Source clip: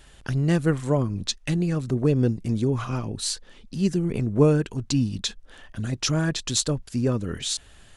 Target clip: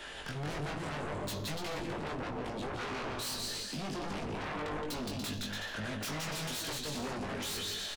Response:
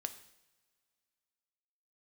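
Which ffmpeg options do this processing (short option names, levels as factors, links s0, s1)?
-filter_complex "[0:a]acrossover=split=280 4700:gain=0.141 1 0.251[s0][s1][s2];[s0][s1][s2]amix=inputs=3:normalize=0,acrossover=split=140[s3][s4];[s4]acompressor=threshold=0.00398:ratio=2[s5];[s3][s5]amix=inputs=2:normalize=0,asoftclip=type=tanh:threshold=0.0133,aecho=1:1:170|289|372.3|430.6|471.4:0.631|0.398|0.251|0.158|0.1[s6];[1:a]atrim=start_sample=2205,asetrate=74970,aresample=44100[s7];[s6][s7]afir=irnorm=-1:irlink=0,aeval=exprs='0.0158*sin(PI/2*4.47*val(0)/0.0158)':c=same,asplit=2[s8][s9];[s9]adelay=20,volume=0.596[s10];[s8][s10]amix=inputs=2:normalize=0"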